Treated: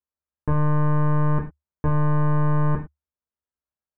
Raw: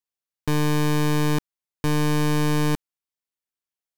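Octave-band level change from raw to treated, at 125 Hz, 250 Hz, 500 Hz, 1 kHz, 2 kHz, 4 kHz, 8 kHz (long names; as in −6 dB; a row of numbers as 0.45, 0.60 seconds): +3.0 dB, −2.0 dB, −2.5 dB, +1.5 dB, −6.5 dB, below −25 dB, below −40 dB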